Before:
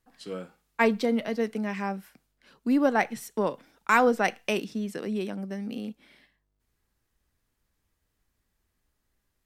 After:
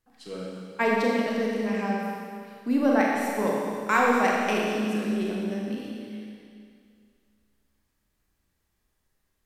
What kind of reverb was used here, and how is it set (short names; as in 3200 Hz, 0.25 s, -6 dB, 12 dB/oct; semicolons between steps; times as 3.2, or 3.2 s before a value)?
Schroeder reverb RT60 2.3 s, combs from 29 ms, DRR -3.5 dB; gain -3 dB